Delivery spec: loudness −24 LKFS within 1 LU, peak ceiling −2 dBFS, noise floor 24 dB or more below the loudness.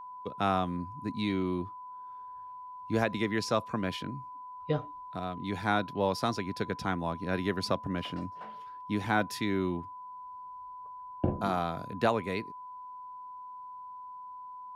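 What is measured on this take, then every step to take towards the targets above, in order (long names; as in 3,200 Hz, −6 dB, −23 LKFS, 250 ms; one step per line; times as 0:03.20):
interfering tone 1,000 Hz; level of the tone −42 dBFS; integrated loudness −32.5 LKFS; sample peak −14.0 dBFS; target loudness −24.0 LKFS
→ notch filter 1,000 Hz, Q 30
level +8.5 dB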